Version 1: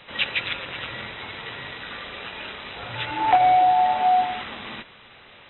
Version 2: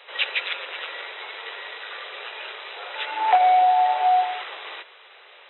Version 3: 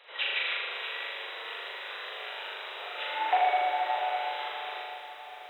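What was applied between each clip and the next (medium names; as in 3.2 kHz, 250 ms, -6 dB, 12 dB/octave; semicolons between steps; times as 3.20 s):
steep high-pass 390 Hz 48 dB/octave
flutter echo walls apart 6.9 m, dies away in 1.4 s; bit-crushed delay 647 ms, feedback 55%, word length 8-bit, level -12 dB; trim -8.5 dB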